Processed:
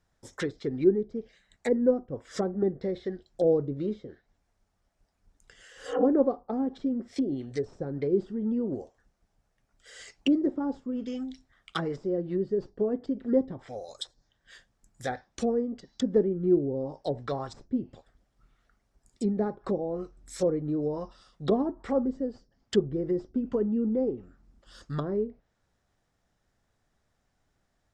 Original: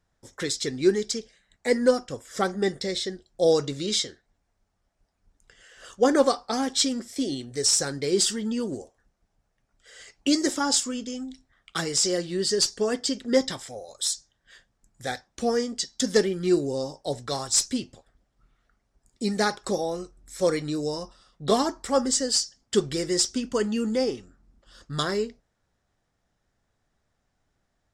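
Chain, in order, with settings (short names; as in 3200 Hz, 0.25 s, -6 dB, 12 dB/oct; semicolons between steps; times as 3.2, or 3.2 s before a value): spectral repair 5.76–6.01, 260–3200 Hz both; treble ducked by the level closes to 480 Hz, closed at -23.5 dBFS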